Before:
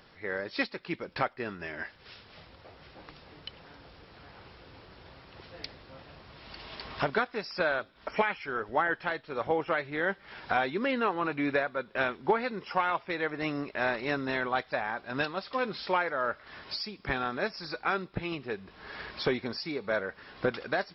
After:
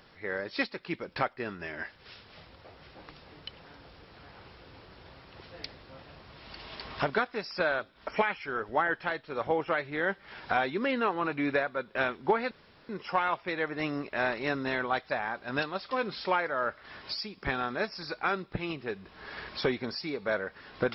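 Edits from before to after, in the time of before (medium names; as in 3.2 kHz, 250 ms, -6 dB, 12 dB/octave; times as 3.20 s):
12.51 s: insert room tone 0.38 s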